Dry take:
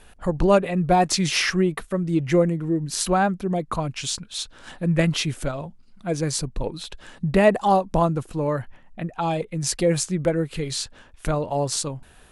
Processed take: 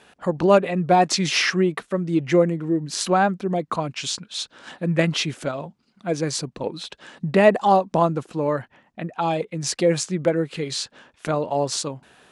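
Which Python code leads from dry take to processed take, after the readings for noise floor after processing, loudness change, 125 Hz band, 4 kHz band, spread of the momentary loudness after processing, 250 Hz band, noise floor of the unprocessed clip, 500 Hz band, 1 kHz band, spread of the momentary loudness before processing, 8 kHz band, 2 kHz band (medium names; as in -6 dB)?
-63 dBFS, +1.0 dB, -2.0 dB, +1.5 dB, 15 LU, 0.0 dB, -51 dBFS, +2.0 dB, +2.0 dB, 13 LU, -1.5 dB, +2.0 dB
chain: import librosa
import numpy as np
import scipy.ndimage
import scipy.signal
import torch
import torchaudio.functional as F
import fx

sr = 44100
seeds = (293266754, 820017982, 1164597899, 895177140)

y = fx.bandpass_edges(x, sr, low_hz=180.0, high_hz=7000.0)
y = y * librosa.db_to_amplitude(2.0)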